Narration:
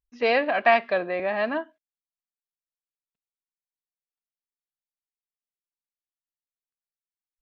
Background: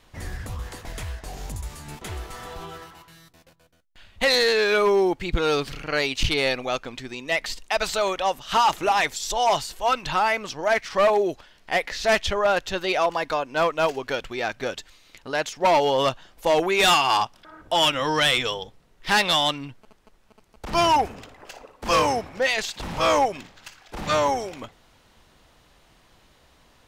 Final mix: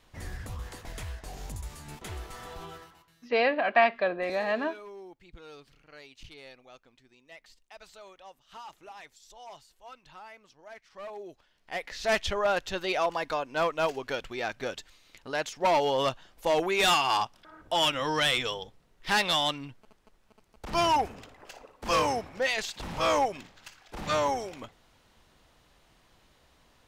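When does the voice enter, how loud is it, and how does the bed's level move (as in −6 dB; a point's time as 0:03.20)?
3.10 s, −3.0 dB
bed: 0:02.72 −5.5 dB
0:03.61 −26 dB
0:10.86 −26 dB
0:12.15 −5.5 dB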